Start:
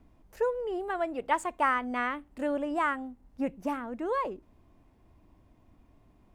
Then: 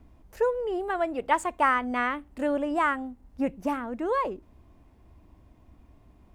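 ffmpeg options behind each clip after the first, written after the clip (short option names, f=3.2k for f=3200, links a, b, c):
-af "equalizer=f=65:w=2.3:g=7,volume=3.5dB"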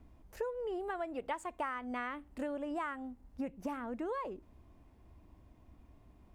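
-af "acompressor=threshold=-31dB:ratio=5,volume=-4.5dB"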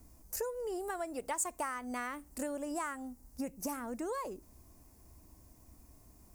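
-af "aexciter=amount=10.2:drive=4.9:freq=4.9k"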